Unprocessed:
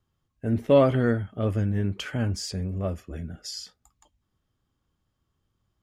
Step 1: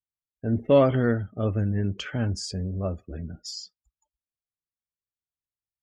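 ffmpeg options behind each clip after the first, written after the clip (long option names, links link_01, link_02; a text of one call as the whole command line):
ffmpeg -i in.wav -af "afftdn=noise_reduction=32:noise_floor=-46" out.wav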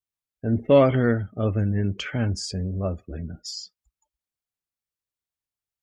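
ffmpeg -i in.wav -af "adynamicequalizer=threshold=0.00141:dfrequency=2200:dqfactor=5.1:tfrequency=2200:tqfactor=5.1:attack=5:release=100:ratio=0.375:range=3.5:mode=boostabove:tftype=bell,volume=2dB" out.wav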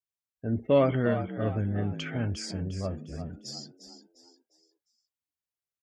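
ffmpeg -i in.wav -filter_complex "[0:a]highpass=44,asplit=2[link_01][link_02];[link_02]asplit=4[link_03][link_04][link_05][link_06];[link_03]adelay=353,afreqshift=60,volume=-10.5dB[link_07];[link_04]adelay=706,afreqshift=120,volume=-18.7dB[link_08];[link_05]adelay=1059,afreqshift=180,volume=-26.9dB[link_09];[link_06]adelay=1412,afreqshift=240,volume=-35dB[link_10];[link_07][link_08][link_09][link_10]amix=inputs=4:normalize=0[link_11];[link_01][link_11]amix=inputs=2:normalize=0,volume=-6dB" out.wav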